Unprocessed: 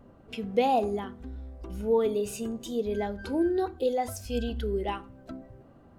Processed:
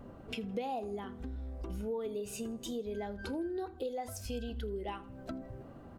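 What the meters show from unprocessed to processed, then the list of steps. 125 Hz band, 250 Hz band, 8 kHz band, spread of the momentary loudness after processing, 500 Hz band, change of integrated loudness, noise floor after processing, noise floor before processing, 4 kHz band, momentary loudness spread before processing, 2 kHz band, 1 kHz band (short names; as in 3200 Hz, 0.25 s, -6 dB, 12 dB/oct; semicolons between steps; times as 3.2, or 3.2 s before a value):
-5.0 dB, -8.5 dB, -4.5 dB, 7 LU, -10.5 dB, -10.5 dB, -51 dBFS, -55 dBFS, -5.5 dB, 17 LU, -7.0 dB, -11.5 dB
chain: compressor 4:1, threshold -42 dBFS, peak gain reduction 19 dB; feedback echo 81 ms, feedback 44%, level -24 dB; gain +4 dB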